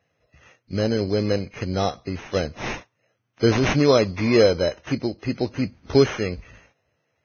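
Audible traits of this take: aliases and images of a low sample rate 4600 Hz, jitter 0%; Vorbis

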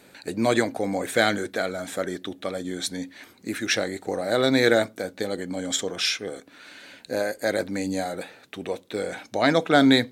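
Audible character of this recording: noise floor -54 dBFS; spectral tilt -4.0 dB/oct

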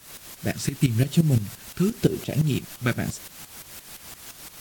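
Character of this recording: phasing stages 2, 1 Hz, lowest notch 620–1400 Hz; a quantiser's noise floor 8-bit, dither triangular; tremolo saw up 5.8 Hz, depth 80%; AAC

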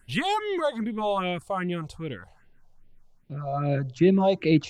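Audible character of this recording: phasing stages 4, 2.5 Hz, lowest notch 260–1300 Hz

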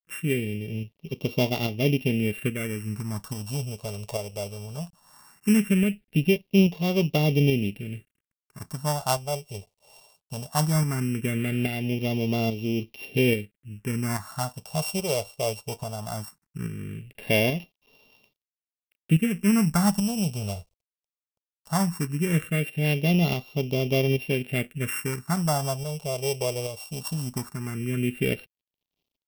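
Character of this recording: a buzz of ramps at a fixed pitch in blocks of 16 samples; tremolo saw up 1.2 Hz, depth 45%; a quantiser's noise floor 12-bit, dither none; phasing stages 4, 0.18 Hz, lowest notch 270–1600 Hz

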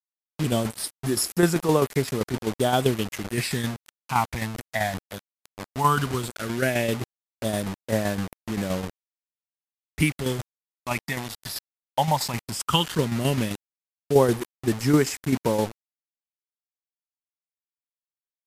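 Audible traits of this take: phasing stages 8, 0.15 Hz, lowest notch 360–3200 Hz; a quantiser's noise floor 6-bit, dither none; tremolo saw down 7.7 Hz, depth 55%; MP3

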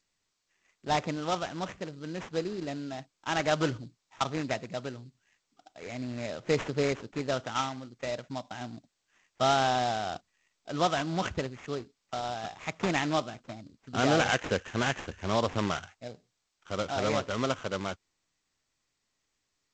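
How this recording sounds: aliases and images of a low sample rate 4500 Hz, jitter 20%; G.722

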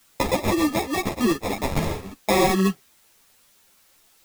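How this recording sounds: aliases and images of a low sample rate 1500 Hz, jitter 0%; random-step tremolo 1.9 Hz; a quantiser's noise floor 10-bit, dither triangular; a shimmering, thickened sound

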